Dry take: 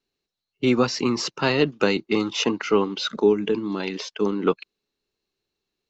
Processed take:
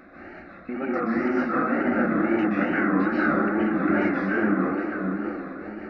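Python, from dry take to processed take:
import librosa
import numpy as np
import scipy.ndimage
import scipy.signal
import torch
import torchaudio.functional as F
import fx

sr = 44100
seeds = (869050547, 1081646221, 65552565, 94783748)

y = x + 0.5 * 10.0 ** (-20.5 / 20.0) * np.sign(x)
y = fx.fixed_phaser(y, sr, hz=650.0, stages=8)
y = fx.step_gate(y, sr, bpm=176, pattern='xxx.x.x.xx.x', floor_db=-60.0, edge_ms=4.5)
y = fx.hum_notches(y, sr, base_hz=60, count=4)
y = fx.level_steps(y, sr, step_db=15)
y = scipy.signal.sosfilt(scipy.signal.butter(4, 2100.0, 'lowpass', fs=sr, output='sos'), y)
y = fx.echo_tape(y, sr, ms=618, feedback_pct=38, wet_db=-3, lp_hz=1300.0, drive_db=20.0, wow_cents=15)
y = fx.rev_plate(y, sr, seeds[0], rt60_s=1.4, hf_ratio=0.6, predelay_ms=115, drr_db=-8.0)
y = fx.wow_flutter(y, sr, seeds[1], rate_hz=2.1, depth_cents=110.0)
y = fx.highpass(y, sr, hz=110.0, slope=6)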